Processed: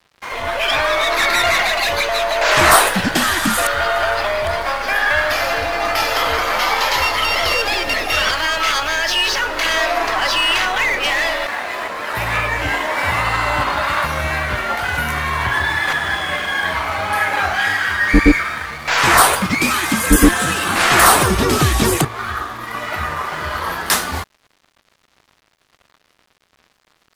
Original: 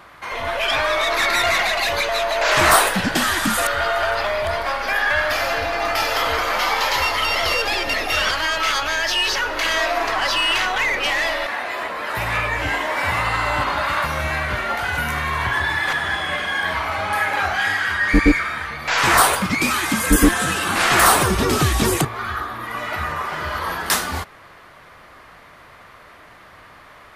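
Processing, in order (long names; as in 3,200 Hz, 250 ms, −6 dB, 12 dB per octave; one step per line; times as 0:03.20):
dead-zone distortion −39.5 dBFS
level +3.5 dB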